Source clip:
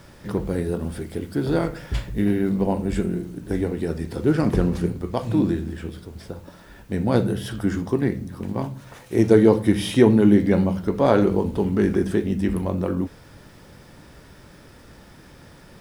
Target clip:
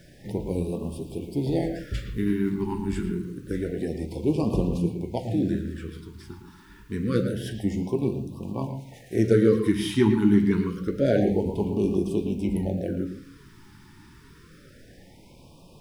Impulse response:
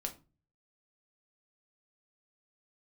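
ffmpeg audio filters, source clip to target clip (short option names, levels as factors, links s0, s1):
-filter_complex "[0:a]flanger=delay=5.6:depth=5.6:regen=72:speed=0.83:shape=triangular,asplit=2[s0][s1];[1:a]atrim=start_sample=2205,lowpass=4700,adelay=112[s2];[s1][s2]afir=irnorm=-1:irlink=0,volume=0.422[s3];[s0][s3]amix=inputs=2:normalize=0,afftfilt=real='re*(1-between(b*sr/1024,560*pow(1700/560,0.5+0.5*sin(2*PI*0.27*pts/sr))/1.41,560*pow(1700/560,0.5+0.5*sin(2*PI*0.27*pts/sr))*1.41))':imag='im*(1-between(b*sr/1024,560*pow(1700/560,0.5+0.5*sin(2*PI*0.27*pts/sr))/1.41,560*pow(1700/560,0.5+0.5*sin(2*PI*0.27*pts/sr))*1.41))':win_size=1024:overlap=0.75"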